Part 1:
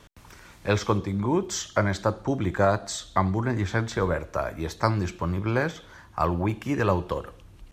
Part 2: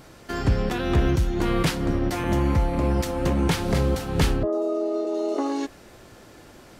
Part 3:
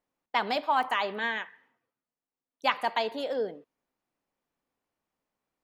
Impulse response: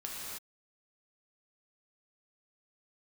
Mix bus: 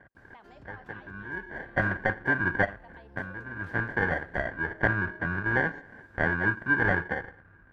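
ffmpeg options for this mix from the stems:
-filter_complex "[0:a]highpass=74,acrusher=samples=34:mix=1:aa=0.000001,lowpass=frequency=1600:width_type=q:width=15,volume=-5.5dB[link_01];[1:a]acompressor=threshold=-24dB:ratio=6,adelay=150,volume=-17.5dB[link_02];[2:a]deesser=0.8,lowpass=3900,volume=-16.5dB,asplit=2[link_03][link_04];[link_04]apad=whole_len=340511[link_05];[link_01][link_05]sidechaincompress=threshold=-58dB:ratio=5:attack=12:release=368[link_06];[link_02][link_03]amix=inputs=2:normalize=0,highshelf=frequency=3800:gain=-10,acompressor=threshold=-55dB:ratio=2,volume=0dB[link_07];[link_06][link_07]amix=inputs=2:normalize=0"

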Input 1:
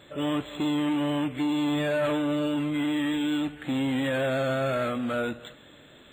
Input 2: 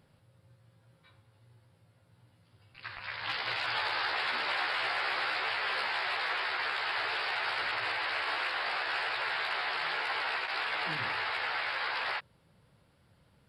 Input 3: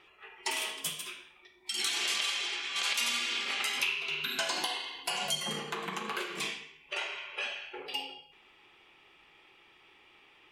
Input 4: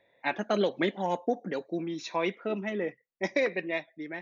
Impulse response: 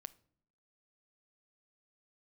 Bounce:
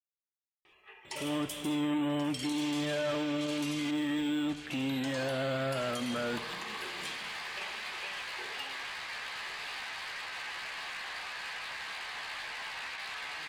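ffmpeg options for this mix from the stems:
-filter_complex "[0:a]adelay=1050,volume=-7dB,asplit=2[link_01][link_02];[link_02]volume=-2.5dB[link_03];[1:a]highpass=frequency=1200:poles=1,asoftclip=type=tanh:threshold=-35dB,adelay=2500,volume=0.5dB,asplit=2[link_04][link_05];[link_05]volume=-9.5dB[link_06];[2:a]adelay=650,volume=-3dB,asplit=3[link_07][link_08][link_09];[link_07]atrim=end=3.91,asetpts=PTS-STARTPTS,afade=type=out:start_time=3.906:duration=0.004:curve=hsin[link_10];[link_08]atrim=start=3.91:end=4.7,asetpts=PTS-STARTPTS,volume=0[link_11];[link_09]atrim=start=4.7,asetpts=PTS-STARTPTS,afade=type=in:duration=0.004:curve=hsin[link_12];[link_10][link_11][link_12]concat=n=3:v=0:a=1,asplit=2[link_13][link_14];[link_14]volume=-16dB[link_15];[link_04][link_13]amix=inputs=2:normalize=0,asuperstop=centerf=1400:order=4:qfactor=7.1,acompressor=threshold=-40dB:ratio=2,volume=0dB[link_16];[4:a]atrim=start_sample=2205[link_17];[link_03][link_17]afir=irnorm=-1:irlink=0[link_18];[link_06][link_15]amix=inputs=2:normalize=0,aecho=0:1:1083:1[link_19];[link_01][link_16][link_18][link_19]amix=inputs=4:normalize=0,alimiter=level_in=2dB:limit=-24dB:level=0:latency=1:release=57,volume=-2dB"

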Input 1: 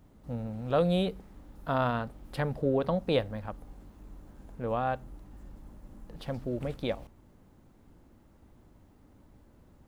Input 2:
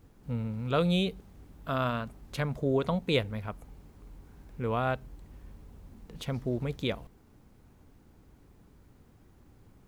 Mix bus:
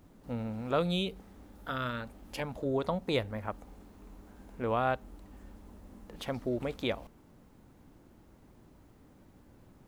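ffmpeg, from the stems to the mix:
ffmpeg -i stem1.wav -i stem2.wav -filter_complex "[0:a]highpass=frequency=130:width=0.5412,highpass=frequency=130:width=1.3066,acompressor=threshold=-32dB:ratio=6,volume=0dB[link_01];[1:a]volume=-3dB[link_02];[link_01][link_02]amix=inputs=2:normalize=0" out.wav

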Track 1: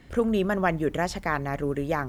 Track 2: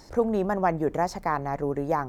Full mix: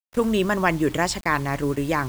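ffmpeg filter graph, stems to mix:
ffmpeg -i stem1.wav -i stem2.wav -filter_complex "[0:a]equalizer=frequency=125:width_type=o:width=0.33:gain=6,equalizer=frequency=315:width_type=o:width=0.33:gain=6,equalizer=frequency=1000:width_type=o:width=0.33:gain=7,equalizer=frequency=8000:width_type=o:width=0.33:gain=8,volume=1.5dB[link_01];[1:a]highpass=frequency=740:poles=1,tremolo=f=1.5:d=0.68,volume=-6dB,asplit=2[link_02][link_03];[link_03]apad=whole_len=92128[link_04];[link_01][link_04]sidechaingate=range=-33dB:threshold=-50dB:ratio=16:detection=peak[link_05];[link_05][link_02]amix=inputs=2:normalize=0,equalizer=frequency=4300:width_type=o:width=2.8:gain=7,acrusher=bits=6:mix=0:aa=0.000001" out.wav

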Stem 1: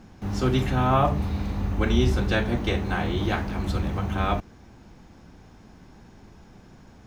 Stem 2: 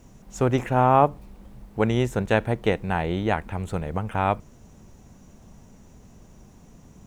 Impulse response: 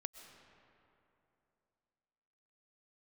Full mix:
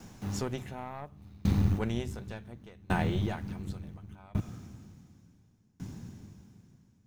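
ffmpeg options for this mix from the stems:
-filter_complex "[0:a]highpass=frequency=91:width=0.5412,highpass=frequency=91:width=1.3066,asubboost=boost=8:cutoff=220,volume=1dB,asplit=2[link_01][link_02];[link_02]volume=-13.5dB[link_03];[1:a]volume=-1.5dB,asplit=2[link_04][link_05];[link_05]apad=whole_len=311621[link_06];[link_01][link_06]sidechaincompress=threshold=-33dB:ratio=8:attack=9.5:release=169[link_07];[2:a]atrim=start_sample=2205[link_08];[link_03][link_08]afir=irnorm=-1:irlink=0[link_09];[link_07][link_04][link_09]amix=inputs=3:normalize=0,highshelf=frequency=4200:gain=9.5,aeval=exprs='(tanh(3.16*val(0)+0.6)-tanh(0.6))/3.16':channel_layout=same,aeval=exprs='val(0)*pow(10,-31*if(lt(mod(0.69*n/s,1),2*abs(0.69)/1000),1-mod(0.69*n/s,1)/(2*abs(0.69)/1000),(mod(0.69*n/s,1)-2*abs(0.69)/1000)/(1-2*abs(0.69)/1000))/20)':channel_layout=same"

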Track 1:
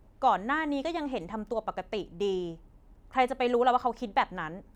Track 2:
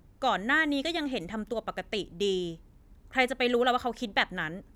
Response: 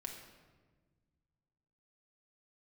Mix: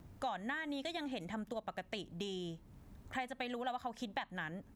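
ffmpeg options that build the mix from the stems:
-filter_complex "[0:a]volume=-8dB[link_01];[1:a]highpass=frequency=57:width=0.5412,highpass=frequency=57:width=1.3066,acompressor=threshold=-28dB:ratio=6,adelay=1,volume=2.5dB[link_02];[link_01][link_02]amix=inputs=2:normalize=0,acompressor=threshold=-47dB:ratio=2"

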